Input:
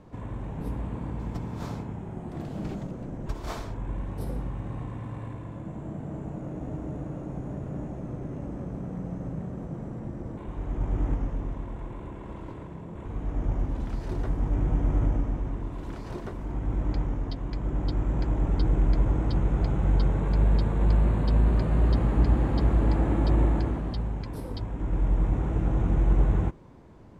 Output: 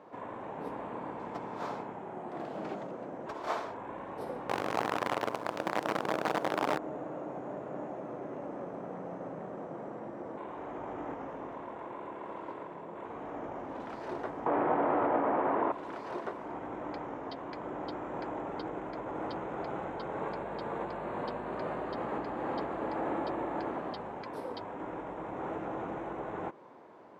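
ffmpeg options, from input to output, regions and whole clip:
-filter_complex "[0:a]asettb=1/sr,asplit=3[a][b][c];[a]atrim=end=4.494[d];[b]atrim=start=4.49:end=6.78,asetpts=PTS-STARTPTS,afade=t=in:d=0.004:c=qsin,afade=t=out:st=2.286:d=0.004:c=qsin,highshelf=f=3.3k:g=-12,acontrast=80,acrusher=bits=5:dc=4:mix=0:aa=0.000001[e];[c]atrim=start=6.776[f];[d][e]acrossfade=d=0.004:c1=hsin:c2=qsin[g];[g][f]acrossfade=d=0.004:c1=qsin:c2=hsin,asettb=1/sr,asplit=3[h][i][j];[h]atrim=end=14.464[k];[i]atrim=start=14.46:end=15.72,asetpts=PTS-STARTPTS,afade=t=in:d=0.004:c=qsin,afade=t=out:st=1.256:d=0.004:c=qsin,lowpass=3k,asplit=2[l][m];[m]highpass=f=720:p=1,volume=25dB,asoftclip=type=tanh:threshold=-12.5dB[n];[l][n]amix=inputs=2:normalize=0,lowpass=f=1.1k:p=1,volume=-6dB[o];[j]atrim=start=15.716[p];[k][o]acrossfade=d=0.004:c1=hsin:c2=qsin[q];[q][p]acrossfade=d=0.004:c1=qsin:c2=hsin,lowpass=f=1k:p=1,acompressor=threshold=-24dB:ratio=3,highpass=600,volume=8.5dB"

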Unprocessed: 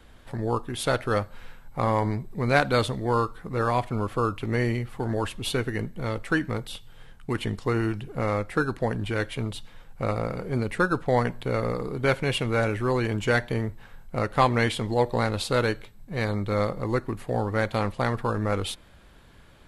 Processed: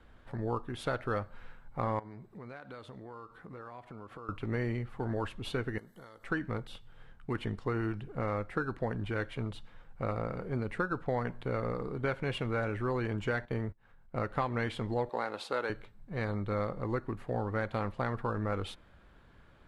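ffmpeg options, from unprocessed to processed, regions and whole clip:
-filter_complex "[0:a]asettb=1/sr,asplit=3[a][b][c];[a]atrim=end=1.994[d];[b]atrim=start=1.99:end=4.29,asetpts=PTS-STARTPTS,afade=t=in:d=0.004:c=qsin,afade=t=out:st=2.296:d=0.004:c=qsin,highpass=f=180:p=1,acompressor=threshold=-37dB:ratio=8:attack=3.2:release=140:knee=1:detection=peak[e];[c]atrim=start=4.286[f];[d][e]acrossfade=d=0.004:c1=hsin:c2=qsin[g];[g][f]acrossfade=d=0.004:c1=qsin:c2=hsin,asettb=1/sr,asplit=3[h][i][j];[h]atrim=end=5.784[k];[i]atrim=start=5.78:end=6.24,asetpts=PTS-STARTPTS,afade=t=in:d=0.004:c=qsin,afade=t=out:st=0.456:d=0.004:c=qsin,aemphasis=mode=production:type=riaa,acompressor=threshold=-40dB:ratio=20:attack=3.2:release=140:knee=1:detection=peak,asuperstop=centerf=2500:order=4:qfactor=2.8[l];[j]atrim=start=6.236[m];[k][l]acrossfade=d=0.004:c1=hsin:c2=qsin[n];[n][m]acrossfade=d=0.004:c1=qsin:c2=hsin,asettb=1/sr,asplit=3[o][p][q];[o]atrim=end=13.454[r];[p]atrim=start=13.45:end=14.15,asetpts=PTS-STARTPTS,afade=t=in:d=0.004:c=qsin,afade=t=out:st=0.696:d=0.004:c=qsin,agate=range=-22dB:threshold=-36dB:ratio=16:release=100:detection=peak,acompressor=mode=upward:threshold=-39dB:ratio=2.5:attack=3.2:release=140:knee=2.83:detection=peak[s];[q]atrim=start=14.146[t];[r][s]acrossfade=d=0.004:c1=hsin:c2=qsin[u];[u][t]acrossfade=d=0.004:c1=qsin:c2=hsin,asettb=1/sr,asplit=3[v][w][x];[v]atrim=end=15.094[y];[w]atrim=start=15.09:end=15.7,asetpts=PTS-STARTPTS,afade=t=in:d=0.004:c=qsin,afade=t=out:st=0.606:d=0.004:c=qsin,highpass=360,equalizer=f=840:w=5.4:g=3.5[z];[x]atrim=start=15.696[aa];[y][z]acrossfade=d=0.004:c1=hsin:c2=qsin[ab];[ab][aa]acrossfade=d=0.004:c1=qsin:c2=hsin,equalizer=f=1.4k:w=2.1:g=3.5,acompressor=threshold=-21dB:ratio=6,lowpass=f=2.1k:p=1,volume=-6dB"

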